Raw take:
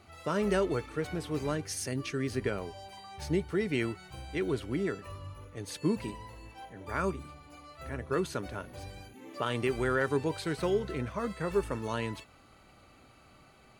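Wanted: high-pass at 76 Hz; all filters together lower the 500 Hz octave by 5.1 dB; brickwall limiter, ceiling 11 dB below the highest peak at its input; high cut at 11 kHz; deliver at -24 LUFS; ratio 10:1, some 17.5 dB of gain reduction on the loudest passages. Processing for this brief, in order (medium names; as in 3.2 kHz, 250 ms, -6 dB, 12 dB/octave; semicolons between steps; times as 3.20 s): high-pass 76 Hz; low-pass 11 kHz; peaking EQ 500 Hz -7 dB; compression 10:1, threshold -45 dBFS; trim +29 dB; peak limiter -14 dBFS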